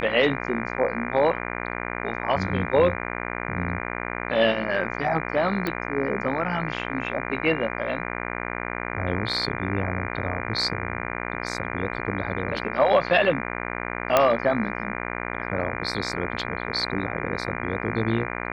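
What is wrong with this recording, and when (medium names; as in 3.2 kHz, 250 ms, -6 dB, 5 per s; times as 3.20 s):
buzz 60 Hz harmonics 40 -31 dBFS
5.67 s: pop -14 dBFS
14.17 s: pop -4 dBFS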